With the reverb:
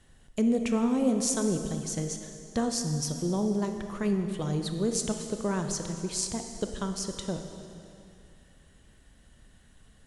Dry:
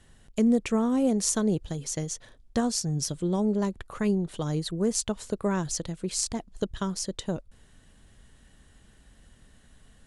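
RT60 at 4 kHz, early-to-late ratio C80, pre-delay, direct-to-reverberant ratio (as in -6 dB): 2.3 s, 7.5 dB, 24 ms, 5.0 dB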